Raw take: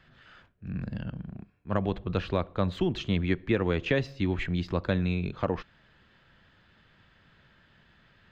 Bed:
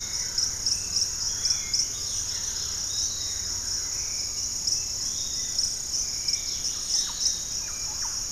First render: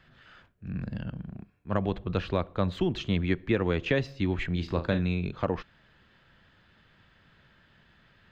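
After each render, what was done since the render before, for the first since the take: 4.52–4.99 flutter echo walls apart 6.2 m, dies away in 0.24 s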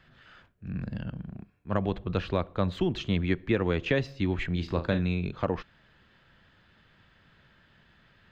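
nothing audible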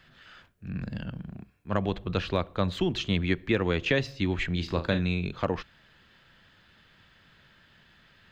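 high shelf 2500 Hz +8 dB; notches 60/120 Hz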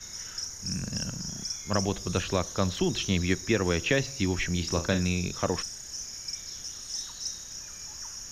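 add bed -10 dB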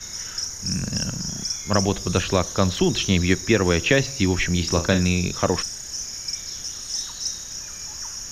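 gain +7 dB

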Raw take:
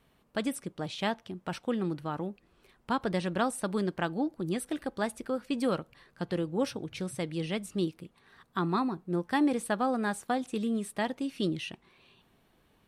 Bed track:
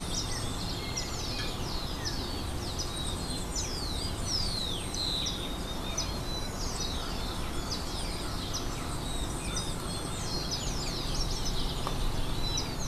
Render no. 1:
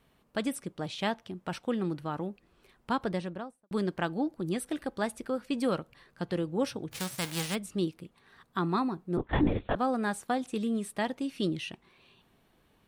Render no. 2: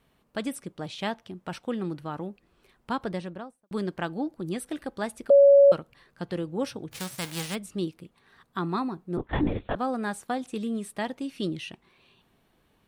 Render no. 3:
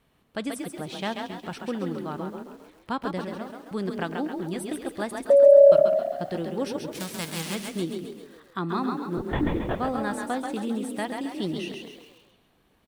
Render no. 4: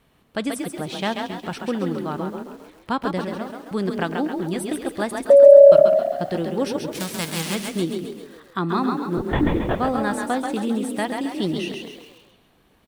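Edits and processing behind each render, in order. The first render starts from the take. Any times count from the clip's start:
2.93–3.71 studio fade out; 6.91–7.54 spectral whitening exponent 0.3; 9.17–9.76 LPC vocoder at 8 kHz whisper
5.3–5.72 bleep 561 Hz -11.5 dBFS
frequency-shifting echo 0.135 s, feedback 46%, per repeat +34 Hz, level -5 dB; lo-fi delay 0.132 s, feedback 55%, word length 8-bit, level -13 dB
gain +5.5 dB; limiter -1 dBFS, peak gain reduction 1.5 dB

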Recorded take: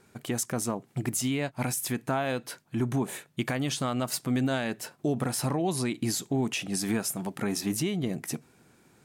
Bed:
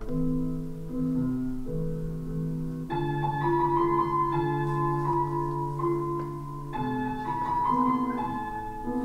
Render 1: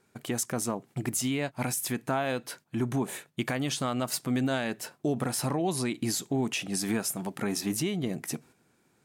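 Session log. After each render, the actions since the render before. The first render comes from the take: gate -51 dBFS, range -7 dB; low shelf 110 Hz -5 dB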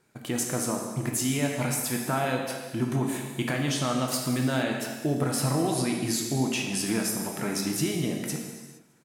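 feedback echo 0.205 s, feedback 39%, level -21.5 dB; non-linear reverb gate 0.49 s falling, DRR 0.5 dB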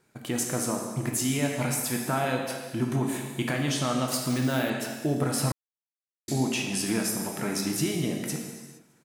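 4.3–4.7 careless resampling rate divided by 3×, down none, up hold; 5.52–6.28 mute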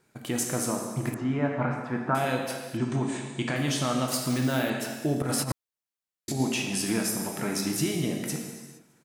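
1.14–2.15 synth low-pass 1300 Hz, resonance Q 1.9; 2.77–3.56 elliptic low-pass 8500 Hz; 5.22–6.4 negative-ratio compressor -28 dBFS, ratio -0.5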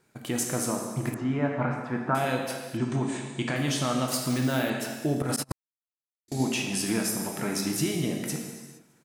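5.36–6.32 gate -28 dBFS, range -28 dB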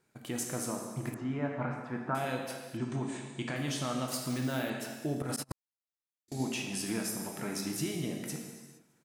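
gain -7 dB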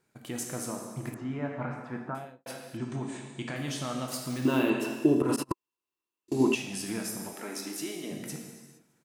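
1.96–2.46 studio fade out; 4.45–6.55 small resonant body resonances 350/1000/2700 Hz, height 17 dB, ringing for 25 ms; 7.33–8.11 HPF 250 Hz 24 dB/oct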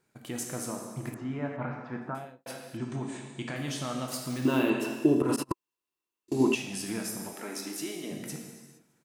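1.56–2 LPF 3900 Hz -> 6800 Hz 24 dB/oct

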